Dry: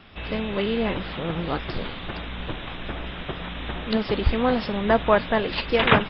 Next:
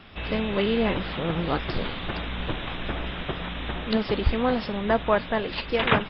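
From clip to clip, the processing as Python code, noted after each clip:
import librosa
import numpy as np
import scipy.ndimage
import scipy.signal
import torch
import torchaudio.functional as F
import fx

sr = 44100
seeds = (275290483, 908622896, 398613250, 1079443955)

y = fx.rider(x, sr, range_db=3, speed_s=2.0)
y = y * 10.0 ** (-1.0 / 20.0)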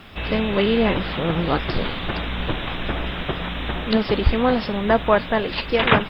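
y = fx.quant_dither(x, sr, seeds[0], bits=12, dither='triangular')
y = y * 10.0 ** (5.0 / 20.0)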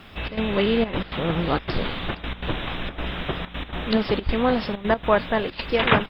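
y = fx.step_gate(x, sr, bpm=161, pattern='xxx.xxxxx.x.xx', floor_db=-12.0, edge_ms=4.5)
y = y * 10.0 ** (-2.0 / 20.0)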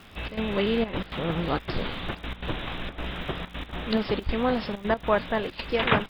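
y = fx.dmg_crackle(x, sr, seeds[1], per_s=82.0, level_db=-37.0)
y = y * 10.0 ** (-4.0 / 20.0)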